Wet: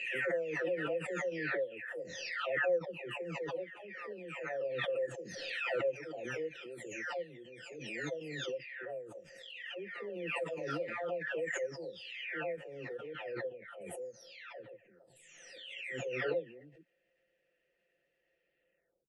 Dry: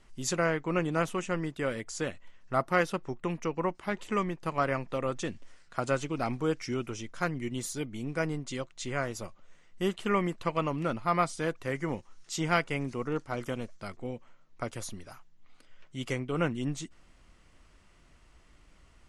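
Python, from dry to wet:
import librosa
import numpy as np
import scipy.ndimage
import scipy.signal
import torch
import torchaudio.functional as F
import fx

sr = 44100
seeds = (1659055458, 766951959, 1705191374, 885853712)

y = fx.spec_delay(x, sr, highs='early', ms=914)
y = fx.vowel_filter(y, sr, vowel='e')
y = fx.pre_swell(y, sr, db_per_s=29.0)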